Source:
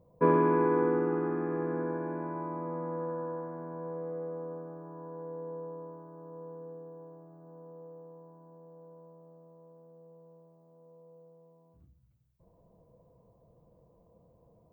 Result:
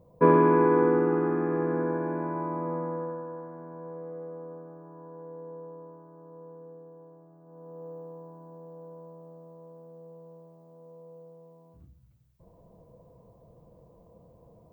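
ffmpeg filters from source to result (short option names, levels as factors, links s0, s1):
-af "volume=5.01,afade=t=out:st=2.73:d=0.51:silence=0.446684,afade=t=in:st=7.45:d=0.45:silence=0.354813"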